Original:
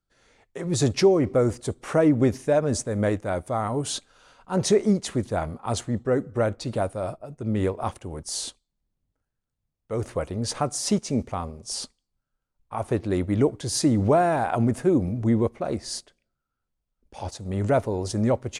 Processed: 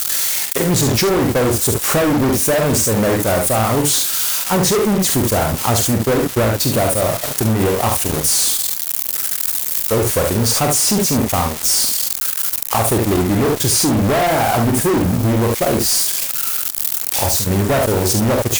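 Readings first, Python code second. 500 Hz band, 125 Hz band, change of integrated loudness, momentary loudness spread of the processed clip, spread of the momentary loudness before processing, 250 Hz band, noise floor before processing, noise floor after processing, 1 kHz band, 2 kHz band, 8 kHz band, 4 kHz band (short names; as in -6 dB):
+6.5 dB, +8.5 dB, +9.5 dB, 3 LU, 13 LU, +7.0 dB, -83 dBFS, -24 dBFS, +10.0 dB, +13.5 dB, +17.5 dB, +14.5 dB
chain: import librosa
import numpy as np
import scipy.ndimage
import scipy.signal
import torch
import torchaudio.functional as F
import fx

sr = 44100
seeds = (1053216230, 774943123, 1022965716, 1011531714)

y = x + 0.5 * 10.0 ** (-26.0 / 20.0) * np.diff(np.sign(x), prepend=np.sign(x[:1]))
y = fx.high_shelf(y, sr, hz=7600.0, db=5.0)
y = fx.room_early_taps(y, sr, ms=(45, 72), db=(-6.5, -6.5))
y = fx.fuzz(y, sr, gain_db=27.0, gate_db=-36.0)
y = fx.transient(y, sr, attack_db=5, sustain_db=-8)
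y = fx.env_flatten(y, sr, amount_pct=50)
y = y * librosa.db_to_amplitude(-1.5)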